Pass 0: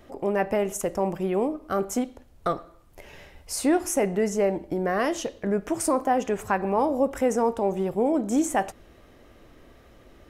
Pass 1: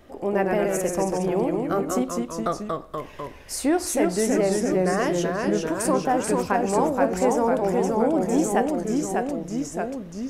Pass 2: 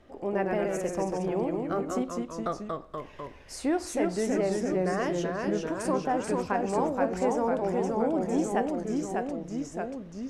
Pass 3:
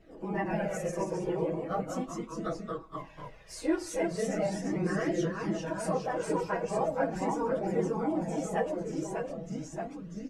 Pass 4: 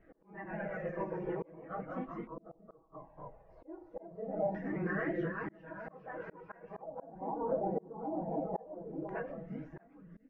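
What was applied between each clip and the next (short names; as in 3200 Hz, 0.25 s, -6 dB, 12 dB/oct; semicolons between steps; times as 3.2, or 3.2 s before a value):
echoes that change speed 88 ms, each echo -1 st, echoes 3
air absorption 55 m; gain -5.5 dB
phase scrambler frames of 50 ms; comb 6.2 ms, depth 54%; flange 0.39 Hz, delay 0.4 ms, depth 1.8 ms, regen -31%
LFO low-pass square 0.22 Hz 790–1800 Hz; air absorption 180 m; auto swell 0.552 s; gain -5.5 dB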